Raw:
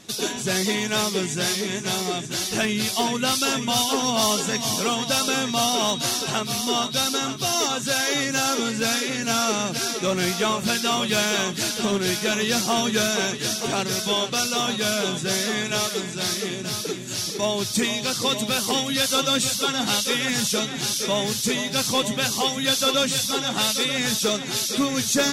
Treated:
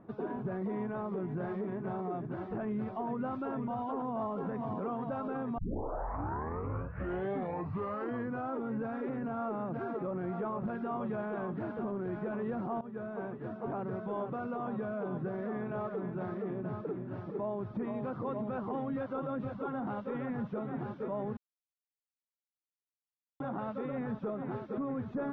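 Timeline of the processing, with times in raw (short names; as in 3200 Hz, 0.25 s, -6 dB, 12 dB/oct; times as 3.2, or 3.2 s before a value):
5.58 tape start 3.00 s
12.81–14.15 fade in, from -18 dB
21.37–23.4 mute
whole clip: LPF 1200 Hz 24 dB/oct; limiter -24.5 dBFS; gain -4 dB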